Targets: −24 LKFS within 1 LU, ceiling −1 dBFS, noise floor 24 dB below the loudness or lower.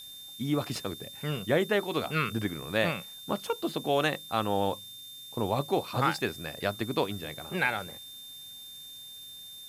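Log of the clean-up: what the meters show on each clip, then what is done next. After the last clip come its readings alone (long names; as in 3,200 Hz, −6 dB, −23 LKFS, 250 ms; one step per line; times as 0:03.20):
interfering tone 3,600 Hz; level of the tone −44 dBFS; background noise floor −46 dBFS; target noise floor −55 dBFS; integrated loudness −30.5 LKFS; sample peak −11.5 dBFS; target loudness −24.0 LKFS
→ notch filter 3,600 Hz, Q 30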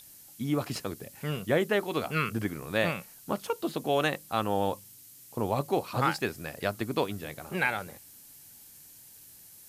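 interfering tone none found; background noise floor −52 dBFS; target noise floor −55 dBFS
→ broadband denoise 6 dB, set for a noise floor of −52 dBFS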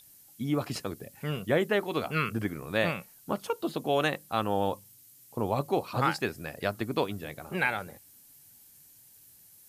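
background noise floor −57 dBFS; integrated loudness −31.0 LKFS; sample peak −11.5 dBFS; target loudness −24.0 LKFS
→ level +7 dB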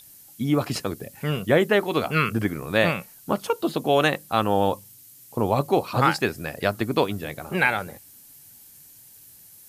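integrated loudness −24.0 LKFS; sample peak −4.5 dBFS; background noise floor −50 dBFS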